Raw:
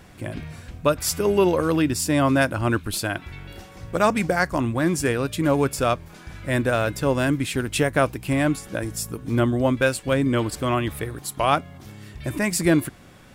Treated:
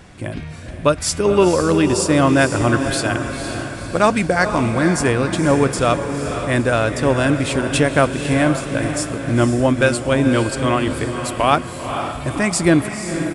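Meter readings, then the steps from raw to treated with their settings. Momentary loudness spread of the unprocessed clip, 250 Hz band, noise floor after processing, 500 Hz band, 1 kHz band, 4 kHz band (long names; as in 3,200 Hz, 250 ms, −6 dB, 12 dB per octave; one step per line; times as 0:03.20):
14 LU, +5.5 dB, −30 dBFS, +5.5 dB, +5.5 dB, +5.5 dB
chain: on a send: feedback delay with all-pass diffusion 498 ms, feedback 53%, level −7.5 dB
on the sum: downsampling to 22,050 Hz
level +4.5 dB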